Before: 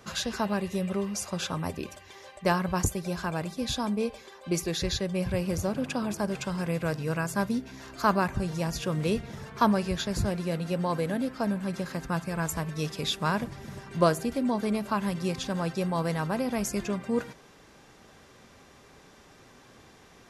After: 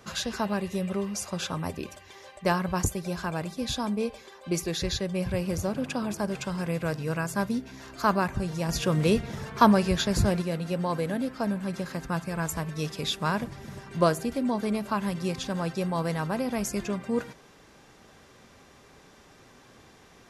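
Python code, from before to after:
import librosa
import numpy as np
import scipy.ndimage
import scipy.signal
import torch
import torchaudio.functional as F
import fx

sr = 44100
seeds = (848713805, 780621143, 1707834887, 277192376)

y = fx.edit(x, sr, fx.clip_gain(start_s=8.69, length_s=1.73, db=4.5), tone=tone)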